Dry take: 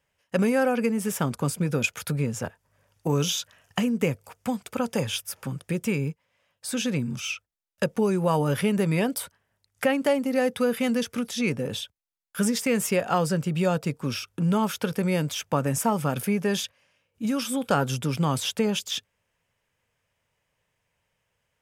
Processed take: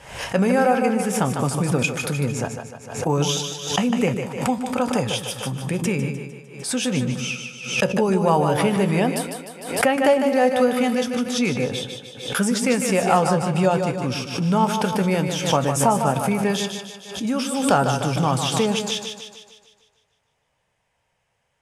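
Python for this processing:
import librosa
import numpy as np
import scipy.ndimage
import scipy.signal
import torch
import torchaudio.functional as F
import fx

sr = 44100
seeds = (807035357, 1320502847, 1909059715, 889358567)

y = scipy.signal.sosfilt(scipy.signal.butter(4, 11000.0, 'lowpass', fs=sr, output='sos'), x)
y = fx.peak_eq(y, sr, hz=780.0, db=7.0, octaves=0.57)
y = fx.comb_fb(y, sr, f0_hz=63.0, decay_s=0.17, harmonics='all', damping=0.0, mix_pct=60)
y = fx.echo_split(y, sr, split_hz=350.0, low_ms=111, high_ms=151, feedback_pct=52, wet_db=-6.5)
y = fx.pre_swell(y, sr, db_per_s=86.0)
y = F.gain(torch.from_numpy(y), 5.5).numpy()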